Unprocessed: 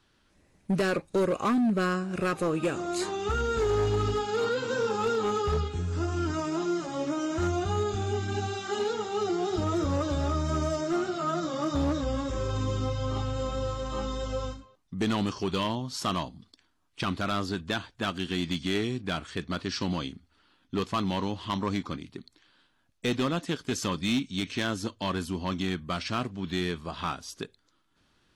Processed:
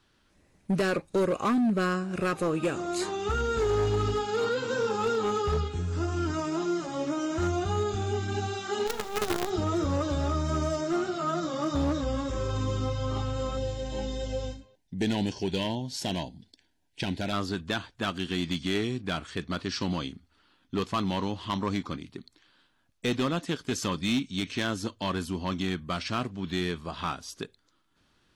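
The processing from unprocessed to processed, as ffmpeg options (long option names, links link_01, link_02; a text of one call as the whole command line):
ffmpeg -i in.wav -filter_complex "[0:a]asplit=3[link_01][link_02][link_03];[link_01]afade=type=out:start_time=8.86:duration=0.02[link_04];[link_02]acrusher=bits=5:dc=4:mix=0:aa=0.000001,afade=type=in:start_time=8.86:duration=0.02,afade=type=out:start_time=9.49:duration=0.02[link_05];[link_03]afade=type=in:start_time=9.49:duration=0.02[link_06];[link_04][link_05][link_06]amix=inputs=3:normalize=0,asettb=1/sr,asplit=3[link_07][link_08][link_09];[link_07]atrim=end=13.574[link_10];[link_08]atrim=start=13.57:end=17.33,asetpts=PTS-STARTPTS,afade=type=in:duration=0.004:curve=qsin,afade=type=out:start_time=3.756:duration=0.004:curve=qsin,asuperstop=centerf=1200:order=4:qfactor=1.9[link_11];[link_09]atrim=start=17.326[link_12];[link_10][link_11]acrossfade=duration=0.004:curve1=hsin:curve2=qsin[link_13];[link_13][link_12]acrossfade=duration=0.004:curve1=qsin:curve2=hsin" out.wav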